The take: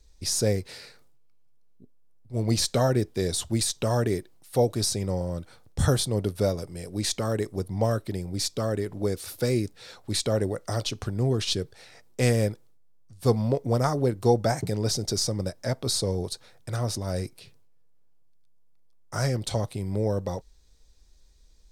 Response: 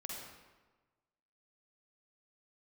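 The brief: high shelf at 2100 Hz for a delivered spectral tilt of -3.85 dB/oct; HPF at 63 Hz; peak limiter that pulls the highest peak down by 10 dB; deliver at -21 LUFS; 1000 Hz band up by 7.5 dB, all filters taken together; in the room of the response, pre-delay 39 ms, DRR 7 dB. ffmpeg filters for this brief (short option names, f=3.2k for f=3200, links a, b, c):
-filter_complex "[0:a]highpass=63,equalizer=f=1k:t=o:g=9,highshelf=f=2.1k:g=7,alimiter=limit=-13dB:level=0:latency=1,asplit=2[a][b];[1:a]atrim=start_sample=2205,adelay=39[c];[b][c]afir=irnorm=-1:irlink=0,volume=-5.5dB[d];[a][d]amix=inputs=2:normalize=0,volume=4.5dB"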